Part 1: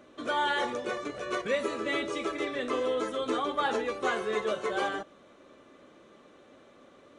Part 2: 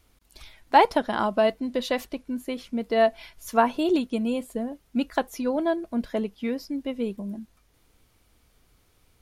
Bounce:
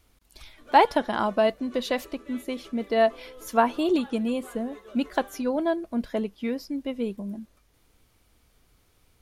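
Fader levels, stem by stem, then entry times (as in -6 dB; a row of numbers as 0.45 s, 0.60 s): -17.5 dB, -0.5 dB; 0.40 s, 0.00 s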